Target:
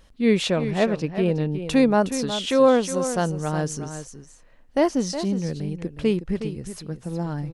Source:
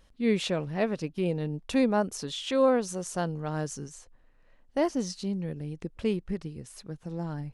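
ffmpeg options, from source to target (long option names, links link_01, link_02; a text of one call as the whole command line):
ffmpeg -i in.wav -filter_complex "[0:a]asettb=1/sr,asplit=3[link_01][link_02][link_03];[link_01]atrim=end=0.714[link_04];[link_02]atrim=start=0.71:end=1.55,asetpts=PTS-STARTPTS,afade=type=in:duration=0.004:curve=qsin,afade=type=out:start_time=0.836:duration=0.004:curve=qsin,highshelf=frequency=8600:gain=-11.5[link_05];[link_03]atrim=start=1.546[link_06];[link_04][link_05]acrossfade=duration=0.004:curve1=hsin:curve2=qsin[link_07];[link_07][link_06]acrossfade=duration=0.004:curve1=qsin:curve2=hsin,aecho=1:1:365:0.299,volume=6.5dB" out.wav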